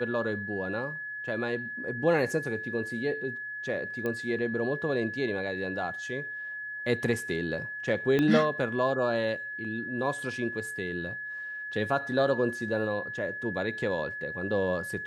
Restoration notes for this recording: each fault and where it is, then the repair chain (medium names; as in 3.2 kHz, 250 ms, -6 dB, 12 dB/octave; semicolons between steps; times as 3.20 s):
whine 1.7 kHz -35 dBFS
4.06 s: pop -20 dBFS
8.19 s: pop -15 dBFS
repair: de-click; band-stop 1.7 kHz, Q 30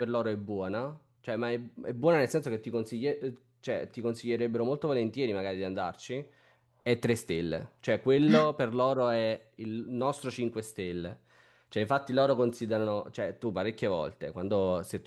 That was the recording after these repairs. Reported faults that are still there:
4.06 s: pop
8.19 s: pop